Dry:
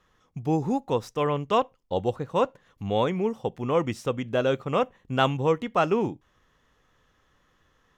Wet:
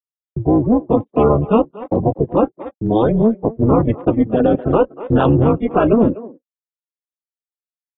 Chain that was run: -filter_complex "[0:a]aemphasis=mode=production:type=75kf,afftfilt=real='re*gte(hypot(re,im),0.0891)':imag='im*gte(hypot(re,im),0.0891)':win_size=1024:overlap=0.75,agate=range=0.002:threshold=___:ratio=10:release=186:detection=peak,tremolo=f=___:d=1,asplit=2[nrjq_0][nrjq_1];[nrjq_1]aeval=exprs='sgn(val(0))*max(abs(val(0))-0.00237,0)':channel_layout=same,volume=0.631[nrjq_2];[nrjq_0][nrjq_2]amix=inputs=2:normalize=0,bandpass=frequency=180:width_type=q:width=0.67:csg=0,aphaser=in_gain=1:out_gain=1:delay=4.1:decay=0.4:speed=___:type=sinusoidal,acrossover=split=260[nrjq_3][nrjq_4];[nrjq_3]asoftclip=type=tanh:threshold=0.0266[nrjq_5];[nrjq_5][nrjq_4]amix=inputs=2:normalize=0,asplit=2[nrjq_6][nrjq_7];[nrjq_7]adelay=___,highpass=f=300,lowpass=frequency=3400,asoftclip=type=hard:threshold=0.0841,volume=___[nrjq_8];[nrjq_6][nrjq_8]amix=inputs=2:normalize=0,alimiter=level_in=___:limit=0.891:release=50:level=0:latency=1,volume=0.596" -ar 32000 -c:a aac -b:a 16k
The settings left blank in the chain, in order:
0.00398, 220, 0.57, 240, 0.112, 12.6